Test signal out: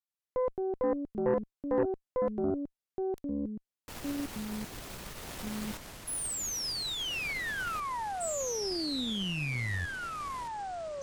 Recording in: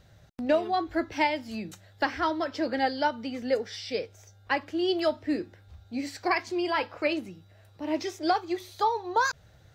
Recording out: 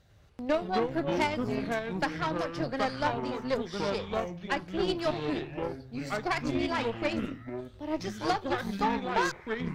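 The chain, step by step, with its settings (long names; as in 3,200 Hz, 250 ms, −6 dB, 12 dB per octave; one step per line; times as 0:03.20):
delay with pitch and tempo change per echo 97 ms, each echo −5 semitones, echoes 3
harmonic generator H 3 −19 dB, 6 −21 dB, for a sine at −11 dBFS
level −2 dB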